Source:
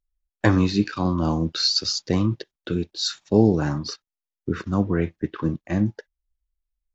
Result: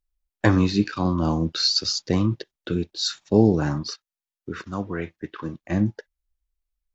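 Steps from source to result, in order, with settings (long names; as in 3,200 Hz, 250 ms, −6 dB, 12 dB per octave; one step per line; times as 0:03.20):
0:03.83–0:05.62: low-shelf EQ 490 Hz −10 dB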